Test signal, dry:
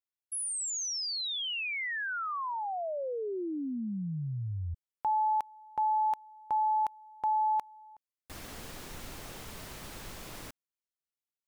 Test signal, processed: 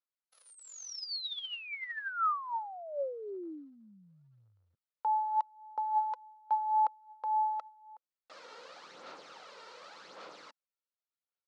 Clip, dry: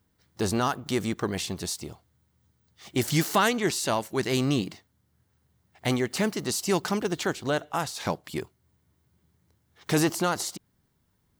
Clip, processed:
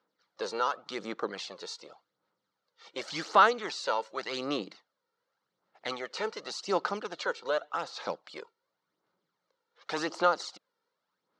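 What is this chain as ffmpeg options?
ffmpeg -i in.wav -af "aphaser=in_gain=1:out_gain=1:delay=2.2:decay=0.51:speed=0.88:type=sinusoidal,highpass=frequency=250:width=0.5412,highpass=frequency=250:width=1.3066,equalizer=frequency=250:width_type=q:width=4:gain=-8,equalizer=frequency=360:width_type=q:width=4:gain=-4,equalizer=frequency=520:width_type=q:width=4:gain=8,equalizer=frequency=900:width_type=q:width=4:gain=4,equalizer=frequency=1300:width_type=q:width=4:gain=10,equalizer=frequency=4200:width_type=q:width=4:gain=5,lowpass=frequency=5800:width=0.5412,lowpass=frequency=5800:width=1.3066,volume=-8.5dB" out.wav

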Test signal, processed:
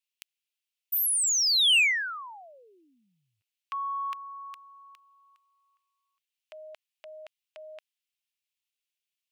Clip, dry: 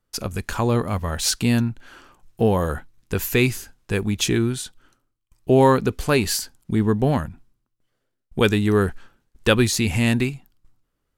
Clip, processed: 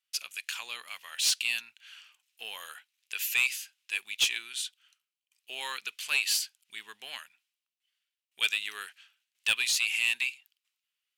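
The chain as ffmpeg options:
ffmpeg -i in.wav -af "highpass=frequency=2700:width_type=q:width=2.9,asoftclip=type=tanh:threshold=-12.5dB,volume=-4.5dB" out.wav

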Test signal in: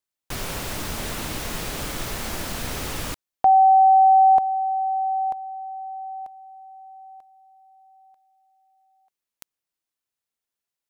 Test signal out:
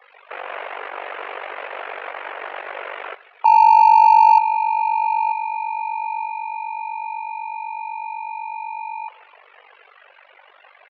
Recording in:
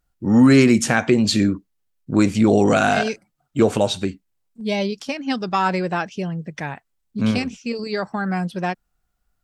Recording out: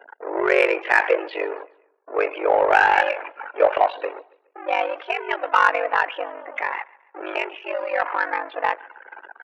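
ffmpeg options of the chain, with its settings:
ffmpeg -i in.wav -af "aeval=exprs='val(0)+0.5*0.0841*sgn(val(0))':channel_layout=same,afftdn=noise_reduction=30:noise_floor=-32,adynamicequalizer=threshold=0.0398:dfrequency=2000:dqfactor=0.75:tfrequency=2000:tqfactor=0.75:attack=5:release=100:ratio=0.417:range=2:mode=boostabove:tftype=bell,apsyclip=4dB,highpass=frequency=360:width_type=q:width=0.5412,highpass=frequency=360:width_type=q:width=1.307,lowpass=frequency=2500:width_type=q:width=0.5176,lowpass=frequency=2500:width_type=q:width=0.7071,lowpass=frequency=2500:width_type=q:width=1.932,afreqshift=130,aeval=exprs='val(0)*sin(2*PI*24*n/s)':channel_layout=same,aecho=1:1:140|280|420:0.0708|0.0304|0.0131,aeval=exprs='0.944*(cos(1*acos(clip(val(0)/0.944,-1,1)))-cos(1*PI/2))+0.00596*(cos(2*acos(clip(val(0)/0.944,-1,1)))-cos(2*PI/2))+0.0266*(cos(7*acos(clip(val(0)/0.944,-1,1)))-cos(7*PI/2))':channel_layout=same,volume=-1dB" out.wav

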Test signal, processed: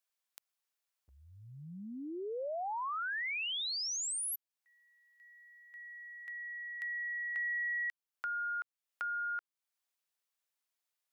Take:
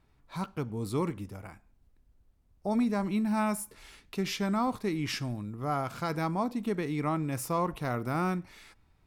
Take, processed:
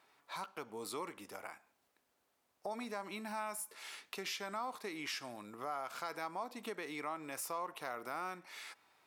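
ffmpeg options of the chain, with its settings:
ffmpeg -i in.wav -filter_complex "[0:a]highpass=600,asplit=2[link_01][link_02];[link_02]alimiter=level_in=7.5dB:limit=-24dB:level=0:latency=1:release=85,volume=-7.5dB,volume=1dB[link_03];[link_01][link_03]amix=inputs=2:normalize=0,acompressor=threshold=-46dB:ratio=2" out.wav

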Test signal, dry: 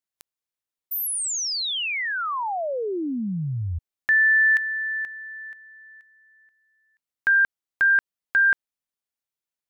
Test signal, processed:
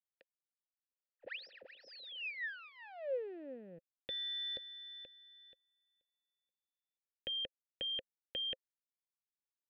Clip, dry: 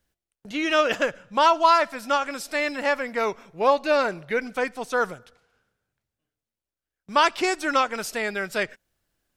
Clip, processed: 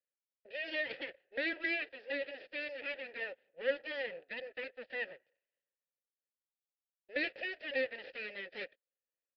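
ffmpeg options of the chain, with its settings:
ffmpeg -i in.wav -filter_complex "[0:a]agate=range=-12dB:threshold=-41dB:ratio=3:release=28:detection=rms,aresample=16000,aeval=exprs='abs(val(0))':channel_layout=same,aresample=44100,acrossover=split=410|1800[link_01][link_02][link_03];[link_02]acompressor=threshold=-40dB:ratio=2:attack=4.7:release=43:knee=2.83:detection=peak[link_04];[link_01][link_04][link_03]amix=inputs=3:normalize=0,aresample=11025,aresample=44100,asplit=3[link_05][link_06][link_07];[link_05]bandpass=frequency=530:width_type=q:width=8,volume=0dB[link_08];[link_06]bandpass=frequency=1840:width_type=q:width=8,volume=-6dB[link_09];[link_07]bandpass=frequency=2480:width_type=q:width=8,volume=-9dB[link_10];[link_08][link_09][link_10]amix=inputs=3:normalize=0,volume=2.5dB" out.wav

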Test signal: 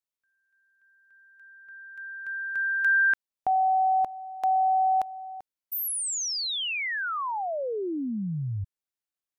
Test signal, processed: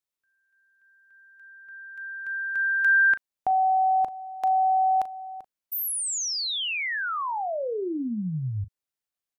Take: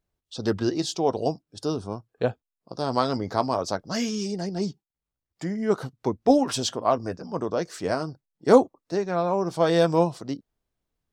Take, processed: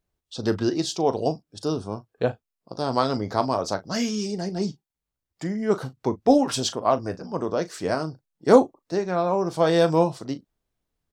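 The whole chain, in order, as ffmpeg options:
ffmpeg -i in.wav -filter_complex "[0:a]asplit=2[link_01][link_02];[link_02]adelay=38,volume=-14dB[link_03];[link_01][link_03]amix=inputs=2:normalize=0,volume=1dB" out.wav

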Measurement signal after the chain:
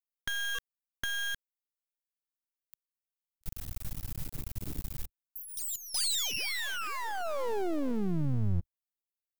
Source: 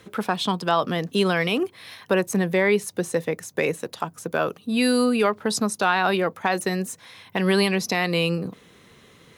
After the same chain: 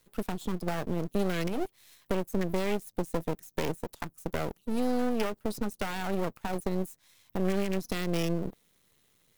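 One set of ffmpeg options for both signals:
ffmpeg -i in.wav -filter_complex "[0:a]afwtdn=0.0501,acrossover=split=510|5000[link_01][link_02][link_03];[link_01]acompressor=threshold=-24dB:ratio=4[link_04];[link_02]acompressor=threshold=-31dB:ratio=4[link_05];[link_03]acompressor=threshold=-57dB:ratio=4[link_06];[link_04][link_05][link_06]amix=inputs=3:normalize=0,lowshelf=frequency=150:gain=7,aeval=exprs='max(val(0),0)':channel_layout=same,aemphasis=mode=production:type=75fm,volume=-1.5dB" out.wav

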